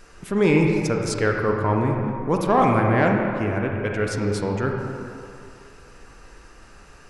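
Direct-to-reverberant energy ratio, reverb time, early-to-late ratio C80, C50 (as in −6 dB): 1.0 dB, 2.6 s, 3.5 dB, 2.0 dB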